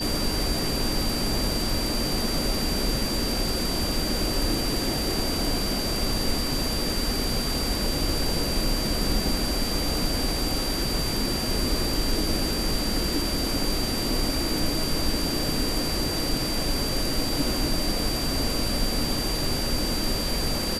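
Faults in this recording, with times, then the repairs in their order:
whistle 4,700 Hz −30 dBFS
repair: notch filter 4,700 Hz, Q 30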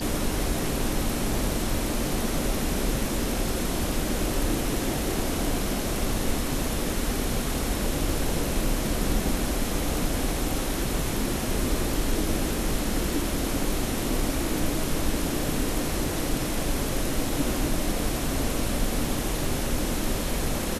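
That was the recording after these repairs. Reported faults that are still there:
none of them is left

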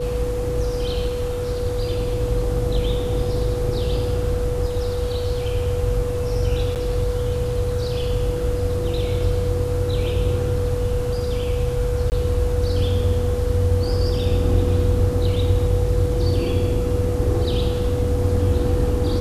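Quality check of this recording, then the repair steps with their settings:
whistle 490 Hz −24 dBFS
0:06.75–0:06.76: drop-out 8.6 ms
0:12.10–0:12.12: drop-out 19 ms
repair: notch filter 490 Hz, Q 30
repair the gap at 0:06.75, 8.6 ms
repair the gap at 0:12.10, 19 ms

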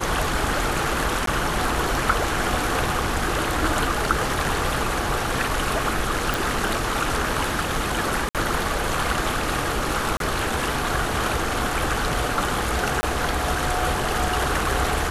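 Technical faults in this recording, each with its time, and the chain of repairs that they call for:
0:01.26–0:01.27: drop-out 13 ms
0:06.34: click
0:08.29–0:08.35: drop-out 57 ms
0:10.17–0:10.20: drop-out 32 ms
0:13.01–0:13.03: drop-out 20 ms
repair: click removal
repair the gap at 0:01.26, 13 ms
repair the gap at 0:08.29, 57 ms
repair the gap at 0:10.17, 32 ms
repair the gap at 0:13.01, 20 ms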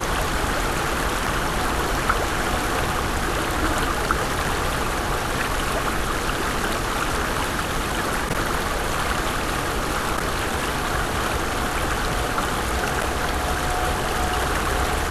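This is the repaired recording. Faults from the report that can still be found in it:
none of them is left

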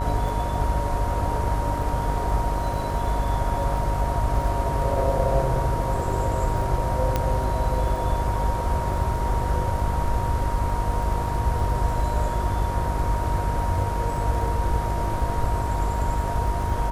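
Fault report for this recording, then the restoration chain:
mains buzz 50 Hz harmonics 34 −28 dBFS
surface crackle 31 per second −32 dBFS
whistle 940 Hz −29 dBFS
0:07.16: click −9 dBFS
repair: click removal
notch filter 940 Hz, Q 30
hum removal 50 Hz, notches 34

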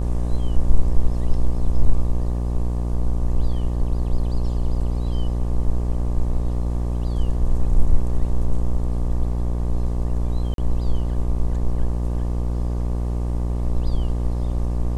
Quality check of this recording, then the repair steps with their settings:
mains buzz 60 Hz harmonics 20 −23 dBFS
0:10.54–0:10.58: drop-out 42 ms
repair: hum removal 60 Hz, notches 20
repair the gap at 0:10.54, 42 ms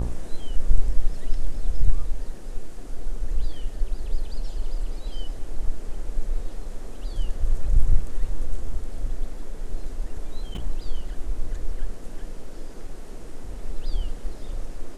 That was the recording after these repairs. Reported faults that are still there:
none of them is left

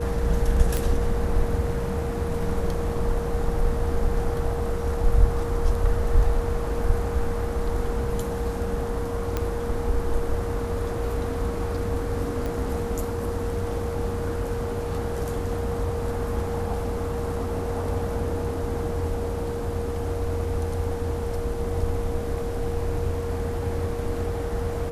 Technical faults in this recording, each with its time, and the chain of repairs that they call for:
whistle 470 Hz −30 dBFS
0:00.77: click
0:09.37: click −12 dBFS
0:12.46: click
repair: click removal
notch filter 470 Hz, Q 30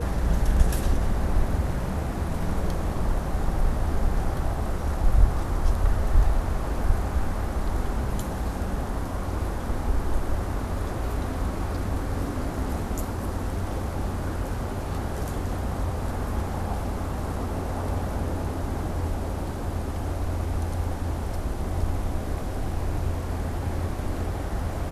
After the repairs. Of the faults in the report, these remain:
none of them is left

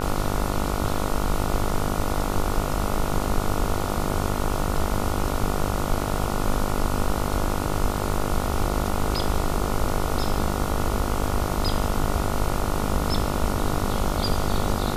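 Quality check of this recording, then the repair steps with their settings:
mains buzz 50 Hz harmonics 29 −28 dBFS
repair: hum removal 50 Hz, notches 29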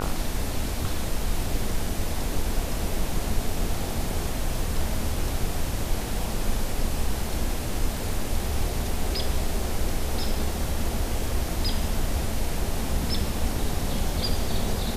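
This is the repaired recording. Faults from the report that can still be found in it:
none of them is left

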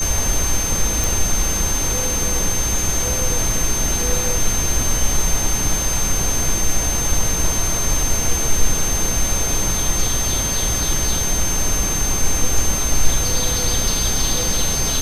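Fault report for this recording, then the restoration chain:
whistle 6,300 Hz −21 dBFS
0:01.04: click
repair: click removal
notch filter 6,300 Hz, Q 30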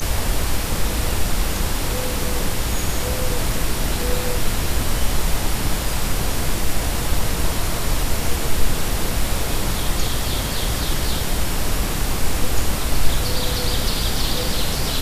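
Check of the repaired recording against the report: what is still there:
none of them is left

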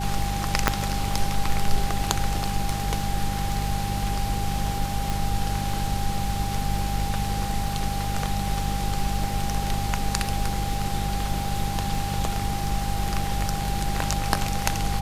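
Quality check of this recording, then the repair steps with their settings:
surface crackle 44 per second −34 dBFS
mains hum 50 Hz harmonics 4 −29 dBFS
whistle 800 Hz −31 dBFS
0:00.68: click −2 dBFS
0:05.10: click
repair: click removal
notch filter 800 Hz, Q 30
hum removal 50 Hz, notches 4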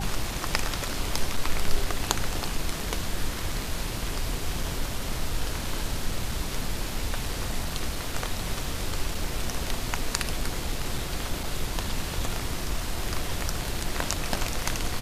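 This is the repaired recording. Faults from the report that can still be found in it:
none of them is left

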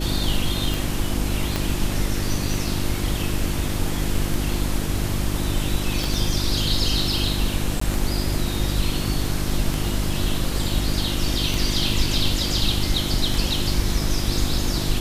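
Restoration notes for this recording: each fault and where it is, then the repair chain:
mains hum 50 Hz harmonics 7 −27 dBFS
scratch tick 33 1/3 rpm
0:01.56: click −8 dBFS
0:06.04: click
0:07.80–0:07.81: drop-out 14 ms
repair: click removal
hum removal 50 Hz, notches 7
repair the gap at 0:07.80, 14 ms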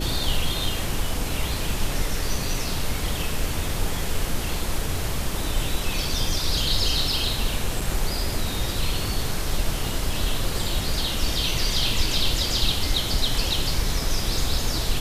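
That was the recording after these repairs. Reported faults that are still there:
0:01.56: click
0:06.04: click

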